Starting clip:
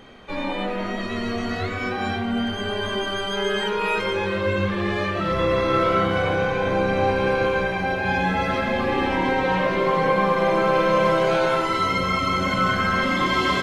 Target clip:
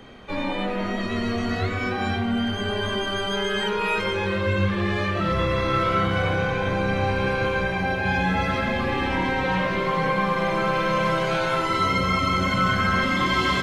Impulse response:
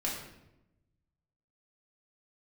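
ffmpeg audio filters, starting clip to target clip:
-filter_complex "[0:a]equalizer=f=82:w=0.38:g=4,acrossover=split=180|1000[a][b][c];[b]alimiter=limit=-20.5dB:level=0:latency=1:release=324[d];[a][d][c]amix=inputs=3:normalize=0"

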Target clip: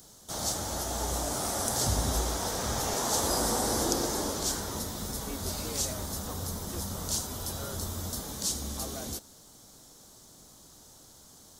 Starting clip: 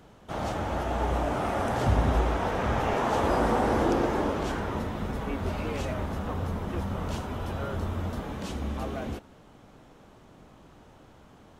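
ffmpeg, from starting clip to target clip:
-af "aexciter=amount=9.5:drive=8.2:freq=4k,volume=-6dB"

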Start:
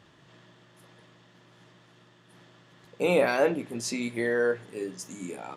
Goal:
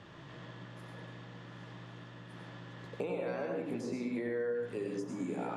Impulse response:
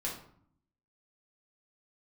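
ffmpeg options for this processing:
-filter_complex "[0:a]acompressor=threshold=-35dB:ratio=6,asplit=2[a][b];[b]equalizer=f=110:t=o:w=0.77:g=3.5[c];[1:a]atrim=start_sample=2205,adelay=90[d];[c][d]afir=irnorm=-1:irlink=0,volume=-4.5dB[e];[a][e]amix=inputs=2:normalize=0,acrossover=split=220|1500[f][g][h];[f]acompressor=threshold=-52dB:ratio=4[i];[g]acompressor=threshold=-40dB:ratio=4[j];[h]acompressor=threshold=-55dB:ratio=4[k];[i][j][k]amix=inputs=3:normalize=0,aemphasis=mode=reproduction:type=50fm,volume=4.5dB"

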